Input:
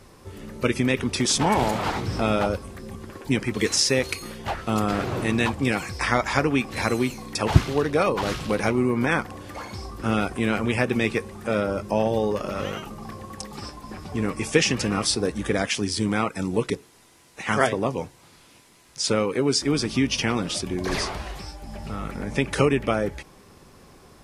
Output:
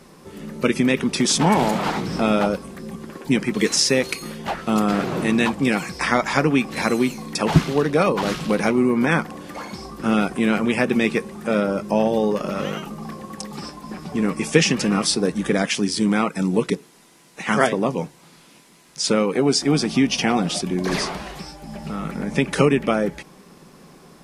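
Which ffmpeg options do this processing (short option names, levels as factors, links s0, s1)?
-filter_complex "[0:a]asettb=1/sr,asplit=3[s0][s1][s2];[s0]atrim=end=19.284[s3];[s1]atrim=start=19.28:end=20.62,asetpts=PTS-STARTPTS,afade=t=in:d=0.004:c=qsin,afade=t=out:st=1.336:d=0.004:c=qsin,equalizer=f=740:w=6.4:g=12[s4];[s2]atrim=start=20.616[s5];[s3][s4]acrossfade=d=0.004:c1=hsin:c2=qsin[s6];[s6][s5]acrossfade=d=0.004:c1=qsin:c2=hsin,lowshelf=f=130:t=q:w=3:g=-7.5,volume=1.33"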